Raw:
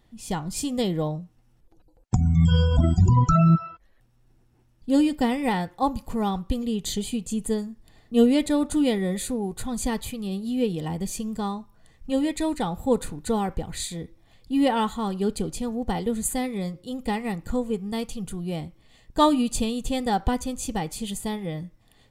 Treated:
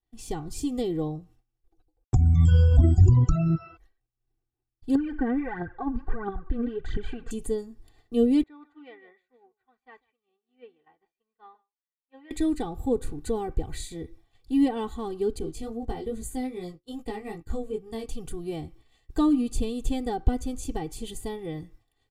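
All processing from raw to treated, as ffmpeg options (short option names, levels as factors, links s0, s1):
-filter_complex "[0:a]asettb=1/sr,asplit=3[s0][s1][s2];[s0]atrim=end=4.954[s3];[s1]atrim=start=4.95:end=7.31,asetpts=PTS-STARTPTS,afade=t=in:d=0.004:c=qsin,afade=t=out:st=2.356:d=0.004:c=qsin,acompressor=threshold=0.0398:ratio=4:attack=3.2:release=140:knee=1:detection=peak,aphaser=in_gain=1:out_gain=1:delay=4.5:decay=0.67:speed=1.5:type=triangular,lowpass=f=1600:t=q:w=8.1[s4];[s2]atrim=start=7.306[s5];[s3][s4]acrossfade=d=0.004:c1=hsin:c2=qsin[s6];[s6][s5]acrossfade=d=0.004:c1=qsin:c2=hsin,asettb=1/sr,asplit=3[s7][s8][s9];[s7]atrim=end=8.434[s10];[s8]atrim=start=8.43:end=12.31,asetpts=PTS-STARTPTS,afade=t=in:d=0.004:c=qsin,afade=t=out:st=3.876:d=0.004:c=qsin,lowpass=f=1900:w=0.5412,lowpass=f=1900:w=1.3066,aderivative,aecho=1:1:152:0.237,atrim=end_sample=171108[s11];[s9]atrim=start=12.306[s12];[s10][s11]acrossfade=d=0.004:c1=hsin:c2=qsin[s13];[s13][s12]acrossfade=d=0.004:c1=qsin:c2=hsin,asettb=1/sr,asplit=3[s14][s15][s16];[s14]atrim=end=15.394[s17];[s15]atrim=start=15.39:end=18.08,asetpts=PTS-STARTPTS,afade=t=in:d=0.004:c=qsin,afade=t=out:st=2.686:d=0.004:c=qsin,agate=range=0.0224:threshold=0.0224:ratio=3:release=100:detection=peak,flanger=delay=17:depth=2.5:speed=2.4[s18];[s16]atrim=start=18.076[s19];[s17][s18]acrossfade=d=0.004:c1=hsin:c2=qsin[s20];[s20][s19]acrossfade=d=0.004:c1=qsin:c2=hsin,agate=range=0.0224:threshold=0.00562:ratio=3:detection=peak,aecho=1:1:2.6:0.8,acrossover=split=420[s21][s22];[s22]acompressor=threshold=0.00447:ratio=2[s23];[s21][s23]amix=inputs=2:normalize=0"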